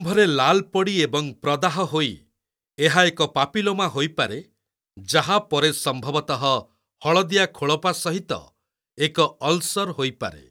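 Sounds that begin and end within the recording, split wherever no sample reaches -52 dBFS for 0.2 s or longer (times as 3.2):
2.78–4.47
4.97–6.66
7.01–8.49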